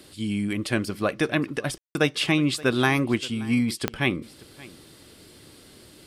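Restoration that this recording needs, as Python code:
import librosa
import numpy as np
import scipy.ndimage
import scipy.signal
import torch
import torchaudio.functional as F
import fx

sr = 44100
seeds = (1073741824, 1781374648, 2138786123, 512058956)

y = fx.fix_declick_ar(x, sr, threshold=10.0)
y = fx.fix_ambience(y, sr, seeds[0], print_start_s=4.84, print_end_s=5.34, start_s=1.78, end_s=1.95)
y = fx.fix_echo_inverse(y, sr, delay_ms=576, level_db=-21.0)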